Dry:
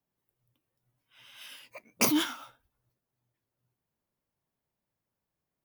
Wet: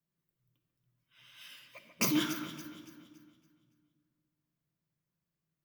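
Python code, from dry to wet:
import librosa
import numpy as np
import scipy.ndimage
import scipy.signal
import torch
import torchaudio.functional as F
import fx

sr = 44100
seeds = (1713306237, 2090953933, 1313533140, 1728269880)

p1 = fx.graphic_eq_31(x, sr, hz=(160, 500, 800, 10000), db=(10, -5, -11, -6))
p2 = p1 + fx.echo_alternate(p1, sr, ms=141, hz=2300.0, feedback_pct=61, wet_db=-8, dry=0)
p3 = fx.room_shoebox(p2, sr, seeds[0], volume_m3=2000.0, walls='mixed', distance_m=0.8)
y = p3 * librosa.db_to_amplitude(-4.5)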